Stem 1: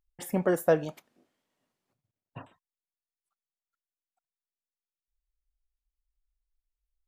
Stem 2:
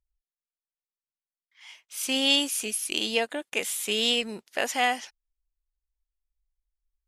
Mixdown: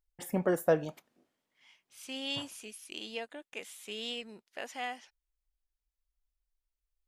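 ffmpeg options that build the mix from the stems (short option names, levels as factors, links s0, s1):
-filter_complex "[0:a]volume=0.708[s0];[1:a]highshelf=f=6800:g=-9,volume=0.224[s1];[s0][s1]amix=inputs=2:normalize=0"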